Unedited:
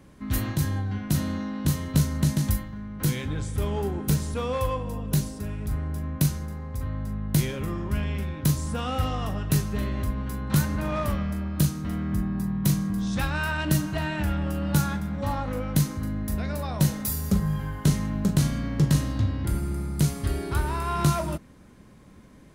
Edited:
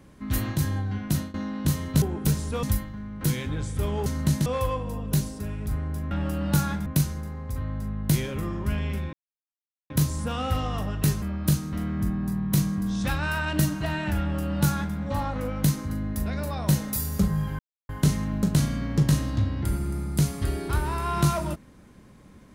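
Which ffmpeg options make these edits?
ffmpeg -i in.wav -filter_complex "[0:a]asplit=11[link_01][link_02][link_03][link_04][link_05][link_06][link_07][link_08][link_09][link_10][link_11];[link_01]atrim=end=1.34,asetpts=PTS-STARTPTS,afade=type=out:start_time=1.05:duration=0.29:curve=qsin:silence=0.0749894[link_12];[link_02]atrim=start=1.34:end=2.022,asetpts=PTS-STARTPTS,afade=type=in:duration=0.004:curve=hsin:silence=0.0749894[link_13];[link_03]atrim=start=3.848:end=4.462[link_14];[link_04]atrim=start=2.418:end=3.852[link_15];[link_05]atrim=start=2.018:end=2.422[link_16];[link_06]atrim=start=4.458:end=6.112[link_17];[link_07]atrim=start=14.318:end=15.072[link_18];[link_08]atrim=start=6.108:end=8.38,asetpts=PTS-STARTPTS,afade=type=out:start_time=2.268:duration=0.004:curve=hsin,apad=pad_dur=0.77[link_19];[link_09]atrim=start=8.38:end=9.702,asetpts=PTS-STARTPTS,afade=type=in:duration=0.004:curve=hsin[link_20];[link_10]atrim=start=11.338:end=17.71,asetpts=PTS-STARTPTS,afade=type=out:start_time=6.368:duration=0.004:curve=hsin,apad=pad_dur=0.3[link_21];[link_11]atrim=start=17.71,asetpts=PTS-STARTPTS,afade=type=in:duration=0.004:curve=hsin[link_22];[link_12][link_13]concat=n=2:v=0:a=1[link_23];[link_23][link_14]acrossfade=duration=0.004:curve1=hsin:curve2=hsin[link_24];[link_24][link_15]acrossfade=duration=0.004:curve1=hsin:curve2=hsin[link_25];[link_25][link_16]acrossfade=duration=0.004:curve1=hsin:curve2=hsin[link_26];[link_26][link_17]acrossfade=duration=0.004:curve1=hsin:curve2=hsin[link_27];[link_27][link_18]acrossfade=duration=0.004:curve1=hsin:curve2=hsin[link_28];[link_19][link_20]concat=n=2:v=0:a=1[link_29];[link_28][link_29]acrossfade=duration=0.004:curve1=hsin:curve2=hsin[link_30];[link_21][link_22]concat=n=2:v=0:a=1[link_31];[link_30][link_31]acrossfade=duration=0.004:curve1=hsin:curve2=hsin" out.wav

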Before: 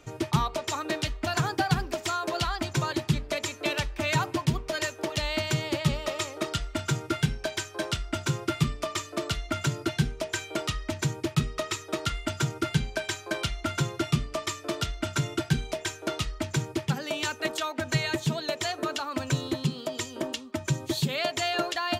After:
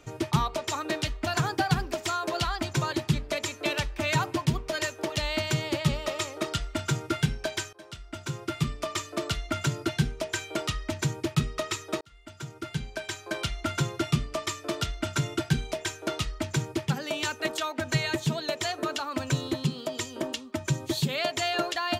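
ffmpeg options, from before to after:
ffmpeg -i in.wav -filter_complex "[0:a]asplit=3[link_01][link_02][link_03];[link_01]atrim=end=7.73,asetpts=PTS-STARTPTS,afade=type=out:start_time=7.726:duration=0.004:curve=hsin:silence=0.0794328[link_04];[link_02]atrim=start=7.73:end=12.01,asetpts=PTS-STARTPTS,afade=type=in:duration=1.23:silence=0.0794328,afade=type=out:start_time=4.276:duration=0.004:curve=hsin[link_05];[link_03]atrim=start=12.01,asetpts=PTS-STARTPTS,afade=type=in:duration=1.61[link_06];[link_04][link_05][link_06]concat=n=3:v=0:a=1" out.wav

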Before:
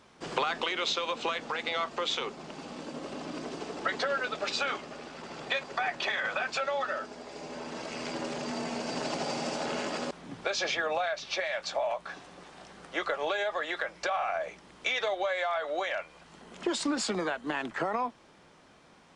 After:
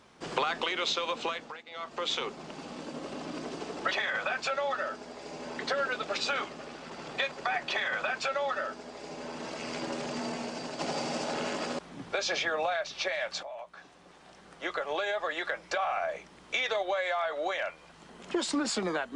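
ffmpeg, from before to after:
ffmpeg -i in.wav -filter_complex "[0:a]asplit=7[link_01][link_02][link_03][link_04][link_05][link_06][link_07];[link_01]atrim=end=1.65,asetpts=PTS-STARTPTS,afade=type=out:start_time=1.2:duration=0.45:silence=0.105925[link_08];[link_02]atrim=start=1.65:end=1.66,asetpts=PTS-STARTPTS,volume=-19.5dB[link_09];[link_03]atrim=start=1.66:end=3.912,asetpts=PTS-STARTPTS,afade=type=in:duration=0.45:silence=0.105925[link_10];[link_04]atrim=start=6.008:end=7.692[link_11];[link_05]atrim=start=3.908:end=9.11,asetpts=PTS-STARTPTS,afade=type=out:start_time=4.662:duration=0.54:silence=0.446684[link_12];[link_06]atrim=start=9.11:end=11.75,asetpts=PTS-STARTPTS,afade=type=in:duration=0.004:curve=hsin:silence=0.446684,afade=type=out:start_time=2.636:duration=0.004:curve=hsin:silence=0.223872[link_13];[link_07]atrim=start=11.75,asetpts=PTS-STARTPTS,afade=type=in:duration=1.85:silence=0.223872[link_14];[link_08][link_09][link_10]concat=n=3:v=0:a=1[link_15];[link_15][link_11]acrossfade=duration=0.004:curve1=hsin:curve2=hsin[link_16];[link_12][link_13][link_14]concat=n=3:v=0:a=1[link_17];[link_16][link_17]acrossfade=duration=0.004:curve1=hsin:curve2=hsin" out.wav

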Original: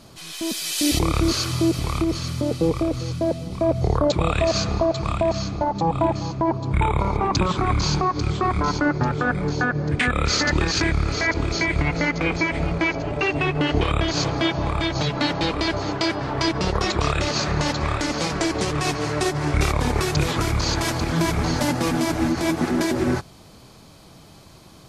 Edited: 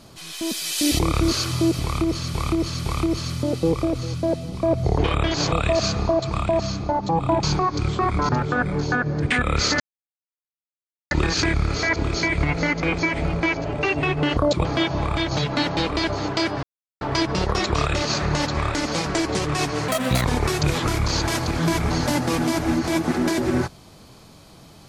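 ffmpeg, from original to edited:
ffmpeg -i in.wav -filter_complex "[0:a]asplit=13[link_01][link_02][link_03][link_04][link_05][link_06][link_07][link_08][link_09][link_10][link_11][link_12][link_13];[link_01]atrim=end=2.342[link_14];[link_02]atrim=start=1.828:end=2.342[link_15];[link_03]atrim=start=1.828:end=3.962[link_16];[link_04]atrim=start=13.748:end=14.292[link_17];[link_05]atrim=start=4.238:end=6.152[link_18];[link_06]atrim=start=7.848:end=8.712[link_19];[link_07]atrim=start=8.978:end=10.49,asetpts=PTS-STARTPTS,afade=type=out:start_time=1.508:duration=0.004:curve=hsin,apad=pad_dur=1.31[link_20];[link_08]atrim=start=10.49:end=13.752,asetpts=PTS-STARTPTS,afade=type=in:duration=0.004:curve=hsin[link_21];[link_09]atrim=start=3.958:end=4.242[link_22];[link_10]atrim=start=14.288:end=16.27,asetpts=PTS-STARTPTS,afade=type=out:start_time=1.978:duration=0.004:curve=hsin,apad=pad_dur=0.38[link_23];[link_11]atrim=start=16.27:end=19.144,asetpts=PTS-STARTPTS,afade=type=in:duration=0.004:curve=hsin[link_24];[link_12]atrim=start=19.14:end=19.78,asetpts=PTS-STARTPTS,asetrate=76734,aresample=44100[link_25];[link_13]atrim=start=19.776[link_26];[link_14][link_15]acrossfade=duration=0.004:curve1=hsin:curve2=hsin[link_27];[link_27][link_16]acrossfade=duration=0.004:curve1=hsin:curve2=hsin[link_28];[link_28][link_17]acrossfade=duration=0.004:curve1=hsin:curve2=hsin[link_29];[link_29][link_18]acrossfade=duration=0.004:curve1=hsin:curve2=hsin[link_30];[link_30][link_19]acrossfade=duration=0.004:curve1=hsin:curve2=hsin[link_31];[link_20][link_21]concat=n=2:v=0:a=1[link_32];[link_31][link_32]acrossfade=duration=0.004:curve1=hsin:curve2=hsin[link_33];[link_33][link_22]acrossfade=duration=0.004:curve1=hsin:curve2=hsin[link_34];[link_23][link_24]concat=n=2:v=0:a=1[link_35];[link_34][link_35]acrossfade=duration=0.004:curve1=hsin:curve2=hsin[link_36];[link_36][link_25]acrossfade=duration=0.004:curve1=hsin:curve2=hsin[link_37];[link_37][link_26]acrossfade=duration=0.004:curve1=hsin:curve2=hsin" out.wav

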